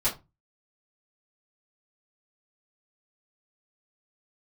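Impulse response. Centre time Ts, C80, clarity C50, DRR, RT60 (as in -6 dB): 19 ms, 20.0 dB, 12.5 dB, -11.0 dB, no single decay rate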